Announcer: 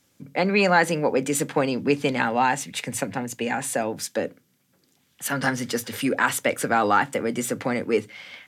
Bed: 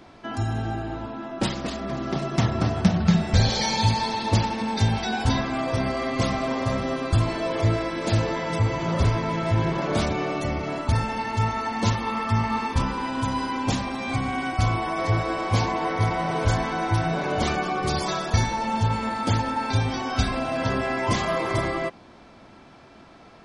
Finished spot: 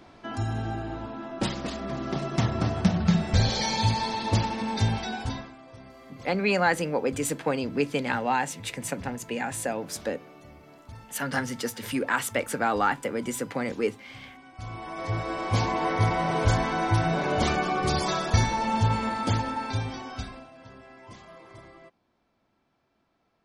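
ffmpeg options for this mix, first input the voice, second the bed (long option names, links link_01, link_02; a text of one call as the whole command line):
ffmpeg -i stem1.wav -i stem2.wav -filter_complex "[0:a]adelay=5900,volume=-4.5dB[link_01];[1:a]volume=19dB,afade=type=out:start_time=4.88:duration=0.68:silence=0.105925,afade=type=in:start_time=14.53:duration=1.36:silence=0.0794328,afade=type=out:start_time=18.93:duration=1.58:silence=0.0707946[link_02];[link_01][link_02]amix=inputs=2:normalize=0" out.wav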